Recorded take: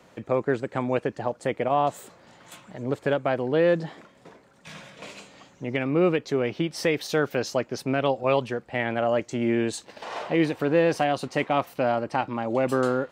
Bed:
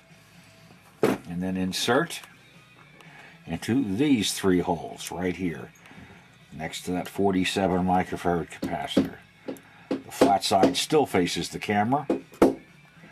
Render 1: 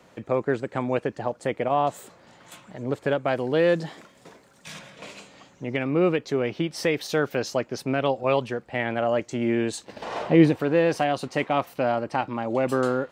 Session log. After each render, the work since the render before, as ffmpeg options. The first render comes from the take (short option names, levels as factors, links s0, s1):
-filter_complex "[0:a]asettb=1/sr,asplit=3[s0][s1][s2];[s0]atrim=end=3.284[s3];[s1]atrim=start=3.28:end=4.79,asetpts=PTS-STARTPTS,afade=t=in:d=0.004:c=qsin,afade=t=out:st=1.506:d=0.004:c=qsin,highshelf=f=4200:g=10[s4];[s2]atrim=start=4.786[s5];[s3][s4]acrossfade=d=0.004:c1=hsin:c2=qsin[s6];[s6][s5]acrossfade=d=0.004:c1=qsin:c2=hsin,asettb=1/sr,asplit=3[s7][s8][s9];[s7]atrim=end=9.884[s10];[s8]atrim=start=9.88:end=10.57,asetpts=PTS-STARTPTS,afade=t=in:d=0.004:c=qsin,afade=t=out:st=0.686:d=0.004:c=qsin,lowshelf=f=430:g=10.5[s11];[s9]atrim=start=10.566[s12];[s10][s11]acrossfade=d=0.004:c1=hsin:c2=qsin[s13];[s13][s12]acrossfade=d=0.004:c1=qsin:c2=hsin"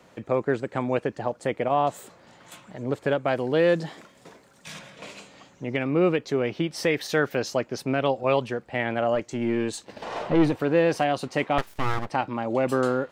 -filter_complex "[0:a]asettb=1/sr,asplit=3[s0][s1][s2];[s0]atrim=end=6.904[s3];[s1]atrim=start=6.9:end=7.33,asetpts=PTS-STARTPTS,afade=t=in:d=0.004:c=qsin,afade=t=out:st=0.426:d=0.004:c=qsin,equalizer=f=1800:w=3.8:g=7.5[s4];[s2]atrim=start=7.326[s5];[s3][s4]acrossfade=d=0.004:c1=hsin:c2=qsin[s6];[s6][s5]acrossfade=d=0.004:c1=qsin:c2=hsin,asettb=1/sr,asplit=3[s7][s8][s9];[s7]atrim=end=9.154[s10];[s8]atrim=start=9.15:end=10.62,asetpts=PTS-STARTPTS,afade=t=in:d=0.004:c=qsin,afade=t=out:st=1.466:d=0.004:c=qsin,aeval=exprs='(tanh(4.47*val(0)+0.35)-tanh(0.35))/4.47':c=same[s11];[s9]atrim=start=10.616[s12];[s10][s11]acrossfade=d=0.004:c1=hsin:c2=qsin[s13];[s13][s12]acrossfade=d=0.004:c1=qsin:c2=hsin,asettb=1/sr,asplit=3[s14][s15][s16];[s14]atrim=end=11.584[s17];[s15]atrim=start=11.58:end=12.1,asetpts=PTS-STARTPTS,afade=t=in:d=0.004:c=qsin,afade=t=out:st=0.516:d=0.004:c=qsin,aeval=exprs='abs(val(0))':c=same[s18];[s16]atrim=start=12.096[s19];[s17][s18]acrossfade=d=0.004:c1=hsin:c2=qsin[s20];[s20][s19]acrossfade=d=0.004:c1=qsin:c2=hsin"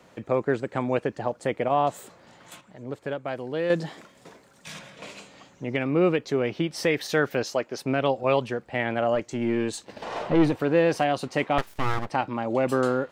-filter_complex "[0:a]asettb=1/sr,asplit=3[s0][s1][s2];[s0]atrim=end=7.434[s3];[s1]atrim=start=7.43:end=7.86,asetpts=PTS-STARTPTS,afade=t=in:d=0.004:c=qsin,afade=t=out:st=0.426:d=0.004:c=qsin,bass=f=250:g=-9,treble=f=4000:g=-1[s4];[s2]atrim=start=7.856[s5];[s3][s4]acrossfade=d=0.004:c1=hsin:c2=qsin[s6];[s6][s5]acrossfade=d=0.004:c1=qsin:c2=hsin,asplit=3[s7][s8][s9];[s7]atrim=end=2.612[s10];[s8]atrim=start=2.608:end=3.702,asetpts=PTS-STARTPTS,volume=0.447[s11];[s9]atrim=start=3.698[s12];[s10][s11]acrossfade=d=0.004:c1=hsin:c2=hsin[s13];[s13][s12]acrossfade=d=0.004:c1=hsin:c2=hsin"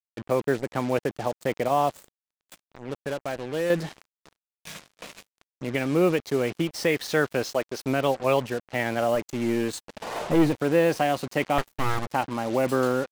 -af "acrusher=bits=5:mix=0:aa=0.5"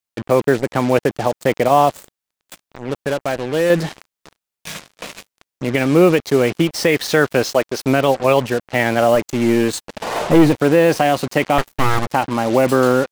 -af "volume=3.16,alimiter=limit=0.708:level=0:latency=1"